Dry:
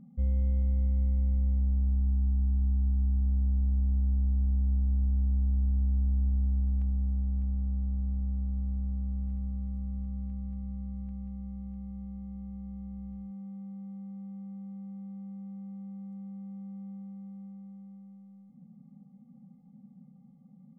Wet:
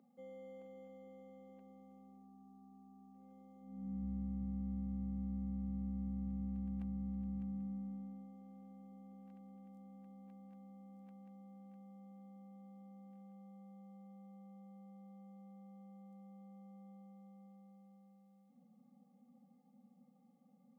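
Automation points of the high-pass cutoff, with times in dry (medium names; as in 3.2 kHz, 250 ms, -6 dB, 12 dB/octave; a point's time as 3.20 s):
high-pass 24 dB/octave
3.59 s 360 Hz
4.05 s 120 Hz
7.34 s 120 Hz
8.35 s 300 Hz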